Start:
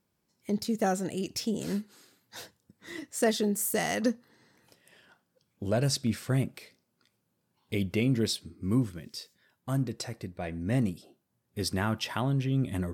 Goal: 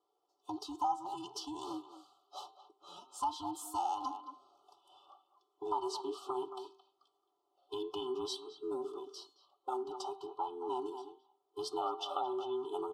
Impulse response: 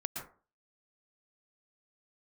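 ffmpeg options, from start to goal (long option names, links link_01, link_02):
-filter_complex "[0:a]afftfilt=real='real(if(between(b,1,1008),(2*floor((b-1)/24)+1)*24-b,b),0)':imag='imag(if(between(b,1,1008),(2*floor((b-1)/24)+1)*24-b,b),0)*if(between(b,1,1008),-1,1)':win_size=2048:overlap=0.75,asplit=3[link_01][link_02][link_03];[link_01]bandpass=frequency=730:width_type=q:width=8,volume=0dB[link_04];[link_02]bandpass=frequency=1090:width_type=q:width=8,volume=-6dB[link_05];[link_03]bandpass=frequency=2440:width_type=q:width=8,volume=-9dB[link_06];[link_04][link_05][link_06]amix=inputs=3:normalize=0,lowshelf=frequency=390:gain=-8,aecho=1:1:2.3:0.95,asplit=2[link_07][link_08];[link_08]adelay=220,highpass=300,lowpass=3400,asoftclip=type=hard:threshold=-34.5dB,volume=-13dB[link_09];[link_07][link_09]amix=inputs=2:normalize=0,acompressor=threshold=-48dB:ratio=2.5,asuperstop=centerf=2000:order=12:qfactor=1.2,lowshelf=frequency=160:gain=-4.5,bandreject=frequency=129.8:width_type=h:width=4,bandreject=frequency=259.6:width_type=h:width=4,bandreject=frequency=389.4:width_type=h:width=4,bandreject=frequency=519.2:width_type=h:width=4,bandreject=frequency=649:width_type=h:width=4,bandreject=frequency=778.8:width_type=h:width=4,bandreject=frequency=908.6:width_type=h:width=4,bandreject=frequency=1038.4:width_type=h:width=4,bandreject=frequency=1168.2:width_type=h:width=4,bandreject=frequency=1298:width_type=h:width=4,bandreject=frequency=1427.8:width_type=h:width=4,bandreject=frequency=1557.6:width_type=h:width=4,bandreject=frequency=1687.4:width_type=h:width=4,bandreject=frequency=1817.2:width_type=h:width=4,bandreject=frequency=1947:width_type=h:width=4,bandreject=frequency=2076.8:width_type=h:width=4,bandreject=frequency=2206.6:width_type=h:width=4,bandreject=frequency=2336.4:width_type=h:width=4,bandreject=frequency=2466.2:width_type=h:width=4,bandreject=frequency=2596:width_type=h:width=4,bandreject=frequency=2725.8:width_type=h:width=4,bandreject=frequency=2855.6:width_type=h:width=4,bandreject=frequency=2985.4:width_type=h:width=4,bandreject=frequency=3115.2:width_type=h:width=4,bandreject=frequency=3245:width_type=h:width=4,bandreject=frequency=3374.8:width_type=h:width=4,bandreject=frequency=3504.6:width_type=h:width=4,bandreject=frequency=3634.4:width_type=h:width=4,bandreject=frequency=3764.2:width_type=h:width=4,bandreject=frequency=3894:width_type=h:width=4,bandreject=frequency=4023.8:width_type=h:width=4,bandreject=frequency=4153.6:width_type=h:width=4,bandreject=frequency=4283.4:width_type=h:width=4,bandreject=frequency=4413.2:width_type=h:width=4,volume=13.5dB"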